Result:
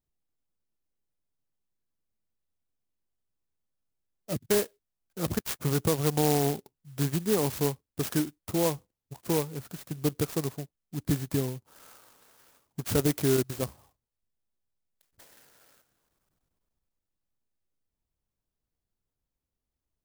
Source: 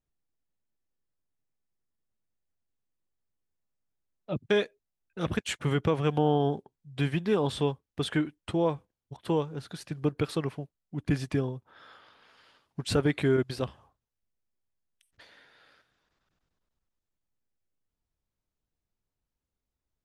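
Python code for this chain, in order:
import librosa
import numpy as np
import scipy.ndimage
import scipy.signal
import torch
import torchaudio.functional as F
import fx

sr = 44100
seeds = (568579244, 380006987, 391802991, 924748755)

y = fx.clock_jitter(x, sr, seeds[0], jitter_ms=0.13)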